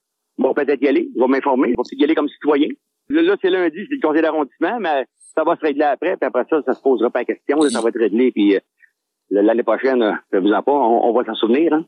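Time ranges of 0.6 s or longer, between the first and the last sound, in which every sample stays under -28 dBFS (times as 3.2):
8.59–9.31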